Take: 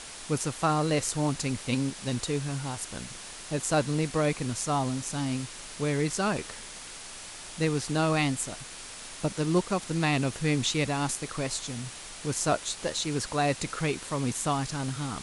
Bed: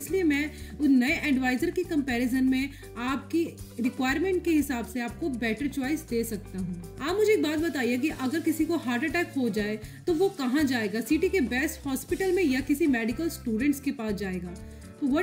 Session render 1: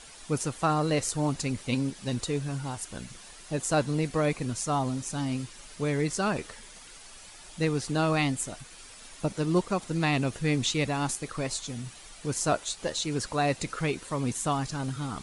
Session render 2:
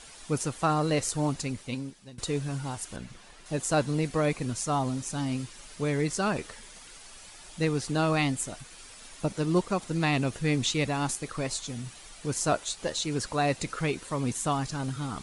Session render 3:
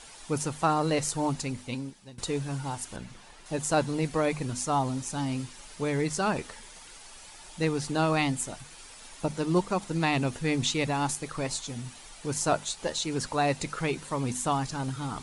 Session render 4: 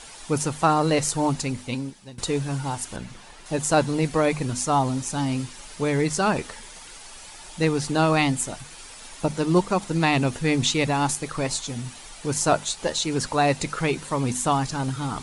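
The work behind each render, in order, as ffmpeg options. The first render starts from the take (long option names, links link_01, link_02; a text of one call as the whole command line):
ffmpeg -i in.wav -af "afftdn=noise_reduction=9:noise_floor=-43" out.wav
ffmpeg -i in.wav -filter_complex "[0:a]asettb=1/sr,asplit=3[link_01][link_02][link_03];[link_01]atrim=end=2.964[link_04];[link_02]atrim=start=2.96:end=3.46,asetpts=PTS-STARTPTS,afade=type=in:duration=0.004:curve=qsin,afade=type=out:start_time=0.496:duration=0.004:curve=qsin,highshelf=frequency=4800:gain=-12[link_05];[link_03]atrim=start=3.456[link_06];[link_04][link_05]acrossfade=duration=0.004:curve1=hsin:curve2=qsin[link_07];[link_07][link_06]acrossfade=duration=0.004:curve1=qsin:curve2=hsin,asplit=2[link_08][link_09];[link_08]atrim=end=2.18,asetpts=PTS-STARTPTS,afade=type=out:start_time=1.24:duration=0.94:silence=0.0749894[link_10];[link_09]atrim=start=2.18,asetpts=PTS-STARTPTS,afade=type=in:duration=0.004:curve=hsin:silence=0.0749894[link_11];[link_10][link_11]concat=n=2:v=0:a=1" out.wav
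ffmpeg -i in.wav -af "equalizer=frequency=880:width=5.7:gain=5.5,bandreject=frequency=50:width_type=h:width=6,bandreject=frequency=100:width_type=h:width=6,bandreject=frequency=150:width_type=h:width=6,bandreject=frequency=200:width_type=h:width=6,bandreject=frequency=250:width_type=h:width=6" out.wav
ffmpeg -i in.wav -af "volume=5.5dB" out.wav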